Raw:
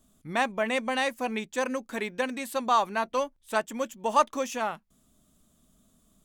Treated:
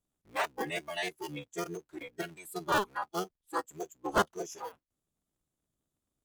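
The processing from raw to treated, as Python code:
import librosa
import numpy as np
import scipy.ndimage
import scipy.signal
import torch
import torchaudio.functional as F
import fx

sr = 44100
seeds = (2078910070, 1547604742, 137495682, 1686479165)

y = fx.cycle_switch(x, sr, every=3, mode='inverted')
y = fx.noise_reduce_blind(y, sr, reduce_db=17)
y = F.gain(torch.from_numpy(y), -5.0).numpy()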